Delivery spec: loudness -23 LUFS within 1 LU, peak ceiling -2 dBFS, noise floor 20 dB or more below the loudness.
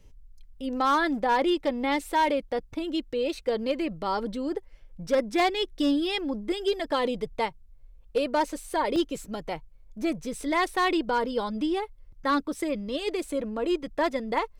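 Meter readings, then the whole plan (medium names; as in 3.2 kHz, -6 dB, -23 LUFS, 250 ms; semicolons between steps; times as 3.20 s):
clipped samples 0.4%; clipping level -17.0 dBFS; dropouts 1; longest dropout 1.2 ms; loudness -28.0 LUFS; peak level -17.0 dBFS; loudness target -23.0 LUFS
-> clip repair -17 dBFS; interpolate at 8.96 s, 1.2 ms; trim +5 dB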